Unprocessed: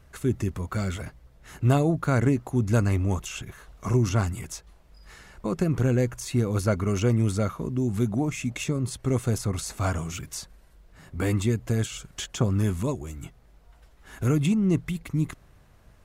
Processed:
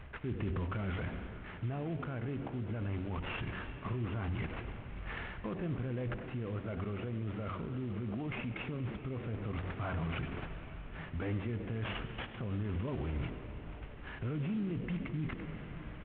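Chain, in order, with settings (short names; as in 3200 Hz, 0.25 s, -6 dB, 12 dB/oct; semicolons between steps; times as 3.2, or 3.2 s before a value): CVSD 16 kbps; reverse; compressor 10:1, threshold -33 dBFS, peak gain reduction 17 dB; reverse; de-hum 93.62 Hz, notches 10; frequency-shifting echo 95 ms, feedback 49%, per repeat +88 Hz, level -17 dB; on a send at -13 dB: reverb RT60 4.8 s, pre-delay 73 ms; on the sum: limiter -35 dBFS, peak gain reduction 11 dB; vocal rider within 3 dB 2 s; gain +5.5 dB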